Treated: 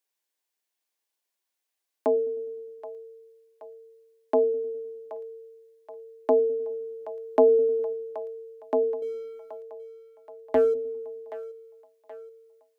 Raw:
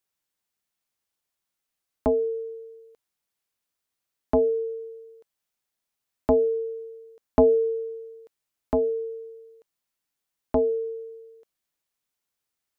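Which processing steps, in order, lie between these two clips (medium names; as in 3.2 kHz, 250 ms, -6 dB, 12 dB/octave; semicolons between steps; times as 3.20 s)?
high-pass 300 Hz 24 dB/octave; band-stop 1.3 kHz, Q 7.1; 9.02–10.74 s: waveshaping leveller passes 1; two-band feedback delay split 450 Hz, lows 102 ms, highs 776 ms, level -14 dB; 6.73–7.93 s: decay stretcher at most 30 dB/s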